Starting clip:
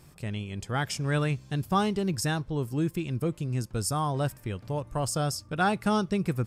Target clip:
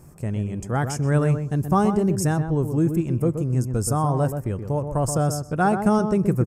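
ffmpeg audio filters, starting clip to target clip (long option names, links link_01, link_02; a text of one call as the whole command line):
ffmpeg -i in.wav -filter_complex "[0:a]firequalizer=gain_entry='entry(530,0);entry(3700,-20);entry(6300,-3)':delay=0.05:min_phase=1,asplit=2[link_01][link_02];[link_02]adelay=126,lowpass=frequency=1400:poles=1,volume=-7dB,asplit=2[link_03][link_04];[link_04]adelay=126,lowpass=frequency=1400:poles=1,volume=0.15,asplit=2[link_05][link_06];[link_06]adelay=126,lowpass=frequency=1400:poles=1,volume=0.15[link_07];[link_01][link_03][link_05][link_07]amix=inputs=4:normalize=0,volume=7dB" out.wav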